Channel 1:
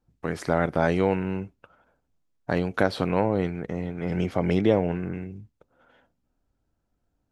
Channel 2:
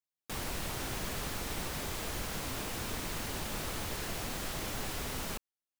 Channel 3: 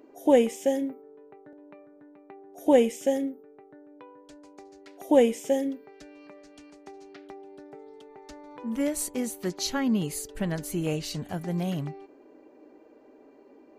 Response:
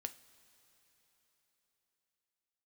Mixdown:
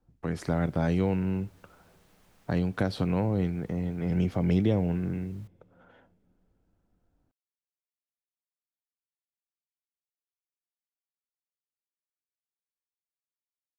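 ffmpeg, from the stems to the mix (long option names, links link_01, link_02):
-filter_complex "[0:a]acrossover=split=220|3000[link_01][link_02][link_03];[link_02]acompressor=threshold=-51dB:ratio=1.5[link_04];[link_01][link_04][link_03]amix=inputs=3:normalize=0,volume=1dB,asplit=2[link_05][link_06];[link_06]volume=-9.5dB[link_07];[1:a]aeval=exprs='0.0126*(abs(mod(val(0)/0.0126+3,4)-2)-1)':channel_layout=same,adelay=100,volume=-18dB[link_08];[3:a]atrim=start_sample=2205[link_09];[link_07][link_09]afir=irnorm=-1:irlink=0[link_10];[link_05][link_08][link_10]amix=inputs=3:normalize=0,highshelf=frequency=2200:gain=-7.5"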